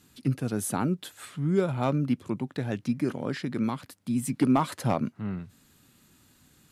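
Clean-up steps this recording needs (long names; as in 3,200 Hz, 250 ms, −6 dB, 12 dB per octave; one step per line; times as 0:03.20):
clipped peaks rebuilt −14 dBFS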